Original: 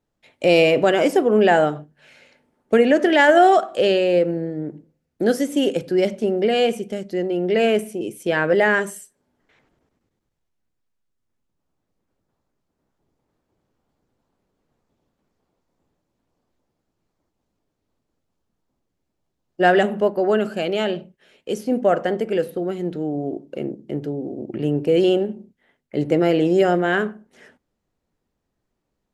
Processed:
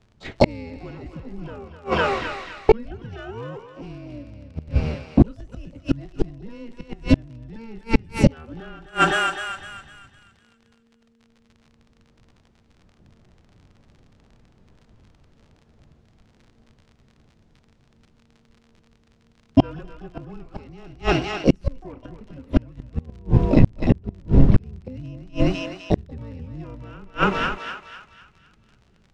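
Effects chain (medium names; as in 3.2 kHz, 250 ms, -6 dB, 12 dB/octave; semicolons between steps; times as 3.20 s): companding laws mixed up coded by mu; gate -47 dBFS, range -10 dB; peaking EQ 150 Hz +10.5 dB 2.8 oct; frequency shift -230 Hz; harmony voices +12 st -7 dB; on a send: thinning echo 253 ms, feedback 42%, high-pass 690 Hz, level -5 dB; on the sum: inverted gate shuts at -10 dBFS, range -37 dB; crackle 54 per s -49 dBFS; distance through air 110 m; loudness maximiser +12.5 dB; trim -1 dB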